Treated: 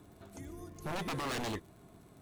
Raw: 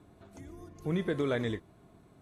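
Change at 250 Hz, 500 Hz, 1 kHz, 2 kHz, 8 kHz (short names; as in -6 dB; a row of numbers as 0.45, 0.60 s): -7.0 dB, -9.0 dB, +5.5 dB, -1.5 dB, n/a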